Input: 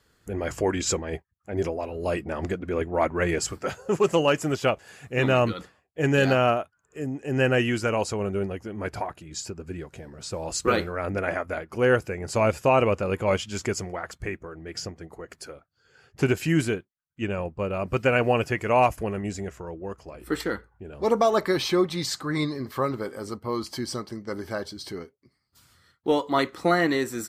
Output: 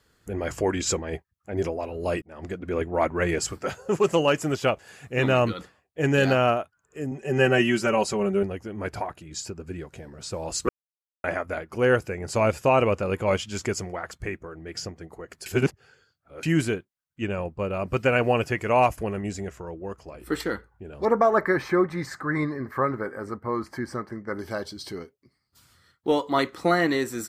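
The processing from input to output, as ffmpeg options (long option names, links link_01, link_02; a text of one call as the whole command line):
ffmpeg -i in.wav -filter_complex "[0:a]asettb=1/sr,asplit=3[link_01][link_02][link_03];[link_01]atrim=end=7.114[link_04];[link_02]atrim=start=7.11:end=8.43,asetpts=PTS-STARTPTS,afade=type=in:duration=0.004:curve=qsin,afade=type=out:start_time=1.316:duration=0.004:curve=qsin,aecho=1:1:5.2:0.88,atrim=end_sample=58212[link_05];[link_03]atrim=start=8.426[link_06];[link_04][link_05]acrossfade=duration=0.004:curve1=hsin:curve2=qsin[link_07];[link_07][link_06]acrossfade=duration=0.004:curve1=qsin:curve2=hsin,asettb=1/sr,asplit=3[link_08][link_09][link_10];[link_08]atrim=end=21.054[link_11];[link_09]atrim=start=21.05:end=24.39,asetpts=PTS-STARTPTS,afade=type=in:duration=0.004:curve=qsin,afade=type=out:start_time=3.336:duration=0.004:curve=qsin,highshelf=frequency=2400:width_type=q:width=3:gain=-10.5[link_12];[link_10]atrim=start=24.386[link_13];[link_11][link_12]acrossfade=duration=0.004:curve1=hsin:curve2=qsin[link_14];[link_14][link_13]acrossfade=duration=0.004:curve1=qsin:curve2=hsin,asplit=6[link_15][link_16][link_17][link_18][link_19][link_20];[link_15]atrim=end=2.22,asetpts=PTS-STARTPTS,afade=type=out:start_time=2.216:duration=0.004:curve=hsin[link_21];[link_16]atrim=start=2.22:end=10.69,asetpts=PTS-STARTPTS,afade=type=in:duration=0.5,afade=type=out:start_time=8.466:duration=0.004:curve=hsin[link_22];[link_17]atrim=start=10.69:end=11.24,asetpts=PTS-STARTPTS,volume=0[link_23];[link_18]atrim=start=11.24:end=15.462,asetpts=PTS-STARTPTS,afade=type=in:duration=0.004:curve=hsin[link_24];[link_19]atrim=start=15.458:end=16.432,asetpts=PTS-STARTPTS,areverse[link_25];[link_20]atrim=start=16.428[link_26];[link_21][link_22][link_23][link_24]concat=n=4:v=0:a=1[link_27];[link_27][link_25]acrossfade=duration=0.004:curve1=hsin:curve2=hsin[link_28];[link_28][link_26]acrossfade=duration=0.004:curve1=hsin:curve2=hsin" out.wav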